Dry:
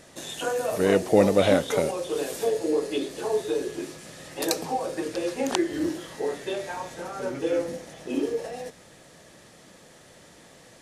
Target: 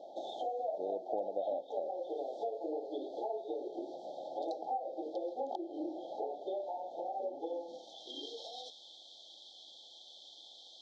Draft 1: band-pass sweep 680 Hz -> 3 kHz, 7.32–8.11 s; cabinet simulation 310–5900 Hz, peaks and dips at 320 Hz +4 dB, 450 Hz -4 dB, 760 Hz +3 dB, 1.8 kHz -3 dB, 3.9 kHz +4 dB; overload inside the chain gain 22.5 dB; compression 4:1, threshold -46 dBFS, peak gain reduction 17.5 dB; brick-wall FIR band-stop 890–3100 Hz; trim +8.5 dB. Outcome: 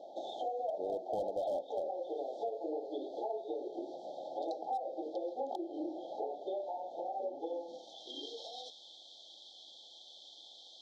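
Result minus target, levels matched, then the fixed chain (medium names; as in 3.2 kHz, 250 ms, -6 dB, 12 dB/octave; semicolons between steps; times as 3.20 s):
overload inside the chain: distortion +30 dB
band-pass sweep 680 Hz -> 3 kHz, 7.32–8.11 s; cabinet simulation 310–5900 Hz, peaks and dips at 320 Hz +4 dB, 450 Hz -4 dB, 760 Hz +3 dB, 1.8 kHz -3 dB, 3.9 kHz +4 dB; overload inside the chain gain 13 dB; compression 4:1, threshold -46 dBFS, peak gain reduction 22 dB; brick-wall FIR band-stop 890–3100 Hz; trim +8.5 dB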